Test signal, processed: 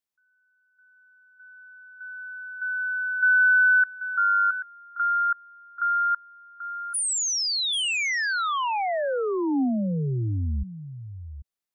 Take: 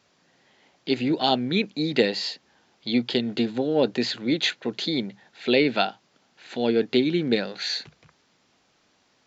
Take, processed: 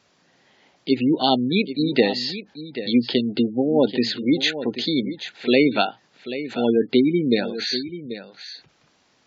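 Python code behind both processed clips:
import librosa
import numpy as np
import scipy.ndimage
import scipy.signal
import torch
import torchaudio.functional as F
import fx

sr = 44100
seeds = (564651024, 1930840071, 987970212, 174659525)

y = x + 10.0 ** (-12.0 / 20.0) * np.pad(x, (int(786 * sr / 1000.0), 0))[:len(x)]
y = fx.dynamic_eq(y, sr, hz=270.0, q=3.9, threshold_db=-37.0, ratio=4.0, max_db=4)
y = fx.spec_gate(y, sr, threshold_db=-25, keep='strong')
y = F.gain(torch.from_numpy(y), 2.5).numpy()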